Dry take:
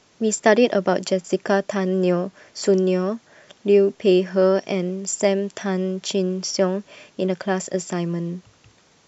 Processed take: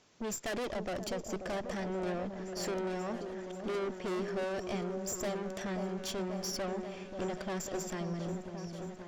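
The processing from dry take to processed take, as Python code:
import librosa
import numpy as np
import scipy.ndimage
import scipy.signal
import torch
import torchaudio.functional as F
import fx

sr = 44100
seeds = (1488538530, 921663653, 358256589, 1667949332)

p1 = fx.tube_stage(x, sr, drive_db=28.0, bias=0.6)
p2 = p1 + fx.echo_opening(p1, sr, ms=535, hz=750, octaves=1, feedback_pct=70, wet_db=-6, dry=0)
y = F.gain(torch.from_numpy(p2), -6.0).numpy()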